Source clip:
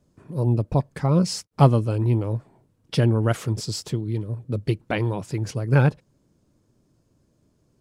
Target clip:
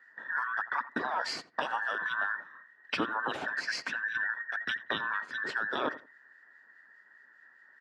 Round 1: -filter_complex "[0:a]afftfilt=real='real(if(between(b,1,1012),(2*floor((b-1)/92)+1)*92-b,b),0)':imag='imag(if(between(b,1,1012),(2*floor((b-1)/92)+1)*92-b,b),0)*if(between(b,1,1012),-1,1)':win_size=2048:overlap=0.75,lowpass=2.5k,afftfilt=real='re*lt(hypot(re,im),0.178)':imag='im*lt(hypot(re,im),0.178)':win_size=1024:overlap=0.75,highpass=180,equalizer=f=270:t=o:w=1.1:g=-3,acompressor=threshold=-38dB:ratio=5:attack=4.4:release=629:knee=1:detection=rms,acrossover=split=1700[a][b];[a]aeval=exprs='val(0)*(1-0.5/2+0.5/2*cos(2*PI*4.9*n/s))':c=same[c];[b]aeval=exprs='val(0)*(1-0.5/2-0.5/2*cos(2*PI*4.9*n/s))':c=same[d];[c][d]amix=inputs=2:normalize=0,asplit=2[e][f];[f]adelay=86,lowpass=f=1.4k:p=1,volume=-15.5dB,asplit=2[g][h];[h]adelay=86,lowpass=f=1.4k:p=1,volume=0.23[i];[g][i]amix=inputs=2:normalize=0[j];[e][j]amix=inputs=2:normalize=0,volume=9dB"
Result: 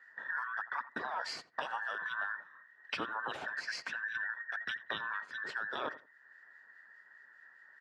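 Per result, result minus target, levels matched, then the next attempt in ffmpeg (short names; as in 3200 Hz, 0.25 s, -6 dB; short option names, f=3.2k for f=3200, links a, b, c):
compressor: peak gain reduction +5.5 dB; 250 Hz band -5.0 dB
-filter_complex "[0:a]afftfilt=real='real(if(between(b,1,1012),(2*floor((b-1)/92)+1)*92-b,b),0)':imag='imag(if(between(b,1,1012),(2*floor((b-1)/92)+1)*92-b,b),0)*if(between(b,1,1012),-1,1)':win_size=2048:overlap=0.75,lowpass=2.5k,afftfilt=real='re*lt(hypot(re,im),0.178)':imag='im*lt(hypot(re,im),0.178)':win_size=1024:overlap=0.75,highpass=180,equalizer=f=270:t=o:w=1.1:g=-3,acompressor=threshold=-31dB:ratio=5:attack=4.4:release=629:knee=1:detection=rms,acrossover=split=1700[a][b];[a]aeval=exprs='val(0)*(1-0.5/2+0.5/2*cos(2*PI*4.9*n/s))':c=same[c];[b]aeval=exprs='val(0)*(1-0.5/2-0.5/2*cos(2*PI*4.9*n/s))':c=same[d];[c][d]amix=inputs=2:normalize=0,asplit=2[e][f];[f]adelay=86,lowpass=f=1.4k:p=1,volume=-15.5dB,asplit=2[g][h];[h]adelay=86,lowpass=f=1.4k:p=1,volume=0.23[i];[g][i]amix=inputs=2:normalize=0[j];[e][j]amix=inputs=2:normalize=0,volume=9dB"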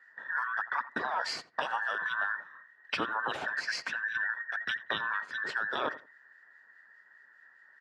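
250 Hz band -5.0 dB
-filter_complex "[0:a]afftfilt=real='real(if(between(b,1,1012),(2*floor((b-1)/92)+1)*92-b,b),0)':imag='imag(if(between(b,1,1012),(2*floor((b-1)/92)+1)*92-b,b),0)*if(between(b,1,1012),-1,1)':win_size=2048:overlap=0.75,lowpass=2.5k,afftfilt=real='re*lt(hypot(re,im),0.178)':imag='im*lt(hypot(re,im),0.178)':win_size=1024:overlap=0.75,highpass=180,equalizer=f=270:t=o:w=1.1:g=3.5,acompressor=threshold=-31dB:ratio=5:attack=4.4:release=629:knee=1:detection=rms,acrossover=split=1700[a][b];[a]aeval=exprs='val(0)*(1-0.5/2+0.5/2*cos(2*PI*4.9*n/s))':c=same[c];[b]aeval=exprs='val(0)*(1-0.5/2-0.5/2*cos(2*PI*4.9*n/s))':c=same[d];[c][d]amix=inputs=2:normalize=0,asplit=2[e][f];[f]adelay=86,lowpass=f=1.4k:p=1,volume=-15.5dB,asplit=2[g][h];[h]adelay=86,lowpass=f=1.4k:p=1,volume=0.23[i];[g][i]amix=inputs=2:normalize=0[j];[e][j]amix=inputs=2:normalize=0,volume=9dB"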